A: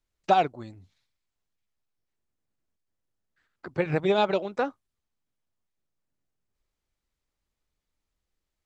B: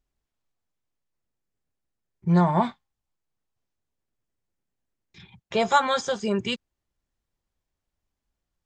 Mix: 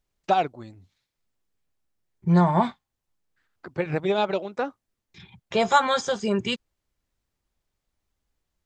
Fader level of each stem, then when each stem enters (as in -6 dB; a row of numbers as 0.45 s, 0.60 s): -0.5 dB, +1.0 dB; 0.00 s, 0.00 s